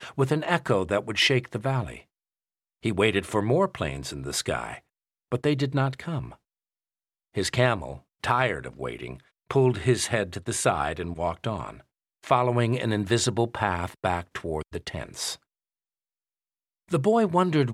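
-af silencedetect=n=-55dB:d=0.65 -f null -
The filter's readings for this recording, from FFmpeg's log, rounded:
silence_start: 2.04
silence_end: 2.83 | silence_duration: 0.79
silence_start: 6.37
silence_end: 7.34 | silence_duration: 0.97
silence_start: 15.43
silence_end: 16.88 | silence_duration: 1.45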